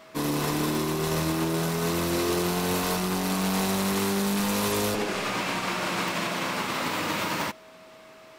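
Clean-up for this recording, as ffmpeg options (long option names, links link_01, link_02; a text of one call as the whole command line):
ffmpeg -i in.wav -af "adeclick=threshold=4,bandreject=frequency=640:width=30" out.wav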